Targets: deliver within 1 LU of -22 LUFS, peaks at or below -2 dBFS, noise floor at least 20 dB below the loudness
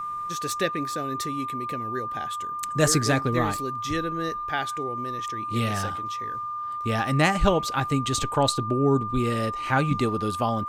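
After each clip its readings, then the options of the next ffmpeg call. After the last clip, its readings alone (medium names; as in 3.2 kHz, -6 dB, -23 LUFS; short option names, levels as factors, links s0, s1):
steady tone 1.2 kHz; tone level -29 dBFS; loudness -26.0 LUFS; peak level -7.0 dBFS; loudness target -22.0 LUFS
-> -af "bandreject=f=1200:w=30"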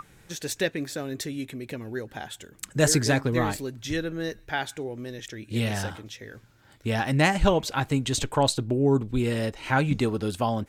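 steady tone not found; loudness -26.5 LUFS; peak level -7.0 dBFS; loudness target -22.0 LUFS
-> -af "volume=1.68"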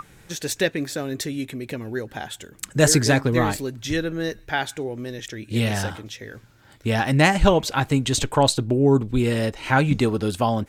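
loudness -22.0 LUFS; peak level -2.5 dBFS; noise floor -52 dBFS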